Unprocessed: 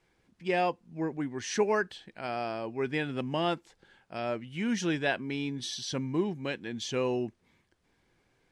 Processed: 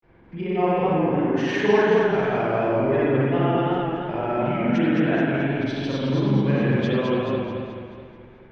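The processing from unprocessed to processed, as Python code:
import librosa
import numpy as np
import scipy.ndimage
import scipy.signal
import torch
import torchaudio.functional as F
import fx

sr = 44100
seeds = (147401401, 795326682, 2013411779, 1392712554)

p1 = scipy.signal.sosfilt(scipy.signal.butter(2, 2900.0, 'lowpass', fs=sr, output='sos'), x)
p2 = fx.high_shelf(p1, sr, hz=2300.0, db=-11.5)
p3 = fx.over_compress(p2, sr, threshold_db=-42.0, ratio=-1.0)
p4 = p2 + (p3 * librosa.db_to_amplitude(1.5))
p5 = fx.granulator(p4, sr, seeds[0], grain_ms=100.0, per_s=20.0, spray_ms=100.0, spread_st=0)
p6 = p5 + fx.echo_split(p5, sr, split_hz=1700.0, low_ms=137, high_ms=197, feedback_pct=52, wet_db=-16.0, dry=0)
p7 = fx.rev_spring(p6, sr, rt60_s=1.2, pass_ms=(44,), chirp_ms=55, drr_db=-5.5)
p8 = fx.echo_warbled(p7, sr, ms=216, feedback_pct=51, rate_hz=2.8, cents=89, wet_db=-3.0)
y = p8 * librosa.db_to_amplitude(1.5)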